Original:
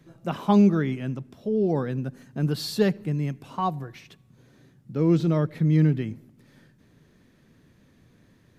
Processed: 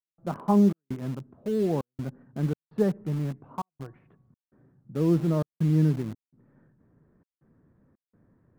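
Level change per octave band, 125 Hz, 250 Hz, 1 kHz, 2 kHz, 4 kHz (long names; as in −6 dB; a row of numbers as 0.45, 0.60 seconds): −3.0 dB, −2.5 dB, −4.5 dB, −9.5 dB, below −10 dB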